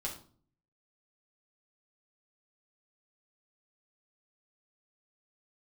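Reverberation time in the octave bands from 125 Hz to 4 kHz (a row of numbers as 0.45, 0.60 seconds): 0.80, 0.65, 0.50, 0.40, 0.30, 0.35 seconds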